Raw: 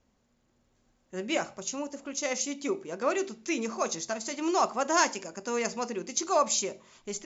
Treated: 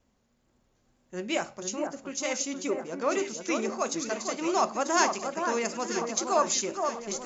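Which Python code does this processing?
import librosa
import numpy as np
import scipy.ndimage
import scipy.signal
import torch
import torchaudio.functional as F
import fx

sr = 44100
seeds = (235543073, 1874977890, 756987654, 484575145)

y = fx.wow_flutter(x, sr, seeds[0], rate_hz=2.1, depth_cents=36.0)
y = fx.echo_alternate(y, sr, ms=470, hz=1600.0, feedback_pct=68, wet_db=-5.0)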